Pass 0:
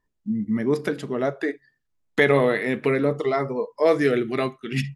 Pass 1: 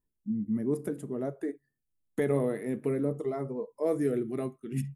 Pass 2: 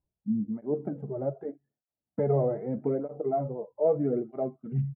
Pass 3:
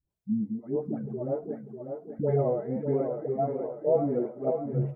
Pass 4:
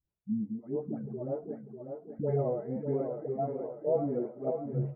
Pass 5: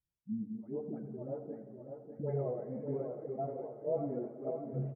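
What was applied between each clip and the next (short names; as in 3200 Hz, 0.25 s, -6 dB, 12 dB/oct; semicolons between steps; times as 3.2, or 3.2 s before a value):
EQ curve 310 Hz 0 dB, 1900 Hz -15 dB, 4700 Hz -19 dB, 8900 Hz +5 dB; gain -6 dB
synth low-pass 760 Hz, resonance Q 1.7; comb 1.4 ms, depth 38%; tape flanging out of phase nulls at 0.81 Hz, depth 4.7 ms; gain +3.5 dB
dispersion highs, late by 0.105 s, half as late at 560 Hz; on a send: thinning echo 0.595 s, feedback 52%, high-pass 160 Hz, level -6 dB
air absorption 340 m; gain -3.5 dB
bin magnitudes rounded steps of 15 dB; feedback echo 88 ms, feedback 60%, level -12.5 dB; reverb RT60 3.3 s, pre-delay 3 ms, DRR 14.5 dB; gain -5.5 dB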